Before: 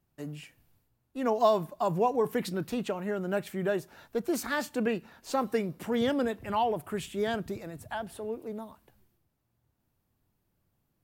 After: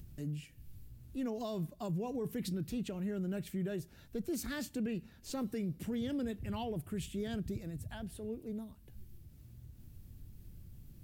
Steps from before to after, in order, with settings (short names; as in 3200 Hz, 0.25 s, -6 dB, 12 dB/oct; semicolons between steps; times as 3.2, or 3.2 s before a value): upward compressor, threshold -41 dBFS; passive tone stack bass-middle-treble 10-0-1; limiter -46.5 dBFS, peak gain reduction 8 dB; gain +16.5 dB